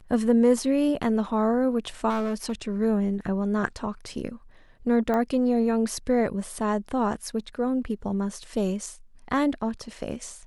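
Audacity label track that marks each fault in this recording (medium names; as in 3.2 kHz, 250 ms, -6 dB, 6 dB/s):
2.090000	2.530000	clipped -23 dBFS
5.140000	5.140000	pop -16 dBFS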